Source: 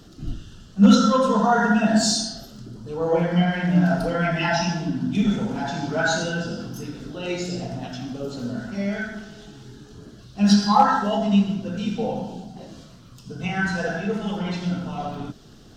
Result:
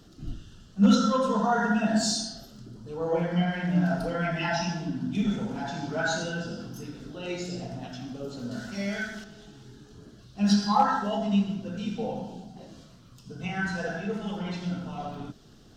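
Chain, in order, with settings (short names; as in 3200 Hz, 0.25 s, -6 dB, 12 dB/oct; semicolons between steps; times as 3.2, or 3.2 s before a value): 8.51–9.24 high shelf 2100 Hz +11 dB; gain -6 dB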